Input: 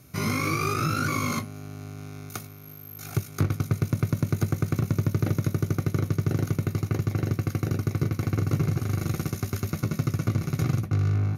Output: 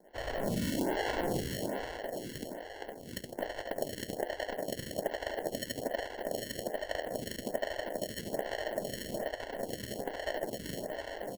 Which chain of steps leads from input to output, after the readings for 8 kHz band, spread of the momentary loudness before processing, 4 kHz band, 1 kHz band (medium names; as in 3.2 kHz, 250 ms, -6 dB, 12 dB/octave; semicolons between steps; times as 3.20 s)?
-6.5 dB, 13 LU, -1.0 dB, -5.5 dB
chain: on a send: reverse bouncing-ball echo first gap 70 ms, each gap 1.25×, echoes 5; on the sum: mistuned SSB +270 Hz 320–2100 Hz; ever faster or slower copies 597 ms, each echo +1 st, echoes 3, each echo -6 dB; harmonic-percussive split harmonic -6 dB; in parallel at -0.5 dB: compression, threshold -42 dBFS, peak gain reduction 14 dB; on the sum: sample-and-hold 36×; lamp-driven phase shifter 1.2 Hz